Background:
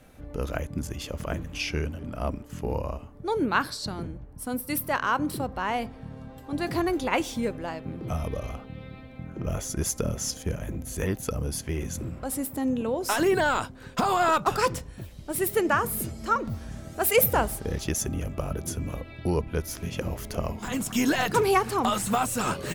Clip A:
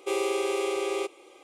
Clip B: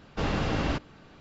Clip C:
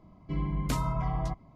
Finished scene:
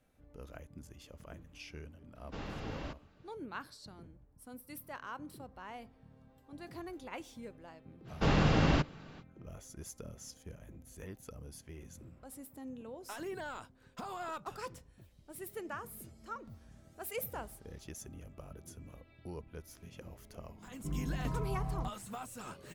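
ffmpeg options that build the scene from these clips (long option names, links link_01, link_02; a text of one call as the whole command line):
ffmpeg -i bed.wav -i cue0.wav -i cue1.wav -i cue2.wav -filter_complex "[2:a]asplit=2[link_01][link_02];[0:a]volume=-19dB[link_03];[link_02]equalizer=frequency=150:width_type=o:width=0.38:gain=6.5[link_04];[3:a]tiltshelf=frequency=1400:gain=7.5[link_05];[link_01]atrim=end=1.2,asetpts=PTS-STARTPTS,volume=-14.5dB,afade=type=in:duration=0.004:curve=hsin,afade=type=out:start_time=1.196:duration=0.004:curve=hsin,adelay=2150[link_06];[link_04]atrim=end=1.2,asetpts=PTS-STARTPTS,volume=-0.5dB,afade=type=in:duration=0.05,afade=type=out:start_time=1.15:duration=0.05,adelay=8040[link_07];[link_05]atrim=end=1.55,asetpts=PTS-STARTPTS,volume=-13.5dB,afade=type=in:duration=0.004:curve=hsin,afade=type=out:start_time=1.546:duration=0.004:curve=hsin,adelay=20550[link_08];[link_03][link_06][link_07][link_08]amix=inputs=4:normalize=0" out.wav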